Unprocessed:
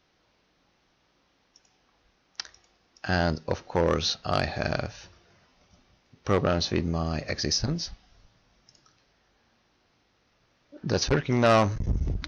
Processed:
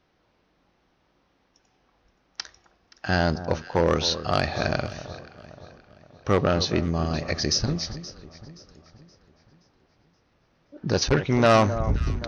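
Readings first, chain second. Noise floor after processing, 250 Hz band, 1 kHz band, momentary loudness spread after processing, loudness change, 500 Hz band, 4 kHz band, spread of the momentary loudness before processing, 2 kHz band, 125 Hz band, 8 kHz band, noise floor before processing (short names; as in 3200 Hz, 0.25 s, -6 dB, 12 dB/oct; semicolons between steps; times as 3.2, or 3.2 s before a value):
-68 dBFS, +3.0 dB, +3.0 dB, 18 LU, +3.0 dB, +3.0 dB, +2.5 dB, 17 LU, +2.5 dB, +2.5 dB, n/a, -69 dBFS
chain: echo with dull and thin repeats by turns 0.262 s, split 1300 Hz, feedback 67%, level -12 dB; mismatched tape noise reduction decoder only; gain +2.5 dB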